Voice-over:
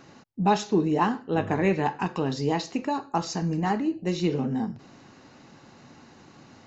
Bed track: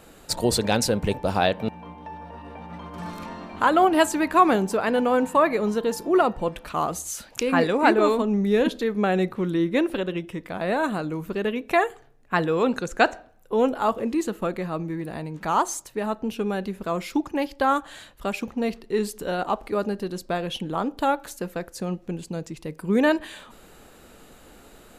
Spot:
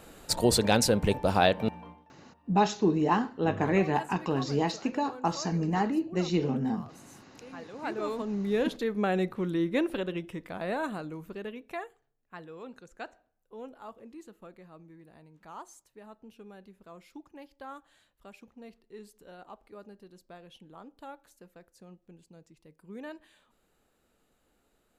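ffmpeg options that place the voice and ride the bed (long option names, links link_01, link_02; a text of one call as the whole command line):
ffmpeg -i stem1.wav -i stem2.wav -filter_complex "[0:a]adelay=2100,volume=-2dB[link_01];[1:a]volume=17dB,afade=type=out:start_time=1.69:duration=0.37:silence=0.0749894,afade=type=in:start_time=7.7:duration=1.08:silence=0.11885,afade=type=out:start_time=10.26:duration=1.75:silence=0.141254[link_02];[link_01][link_02]amix=inputs=2:normalize=0" out.wav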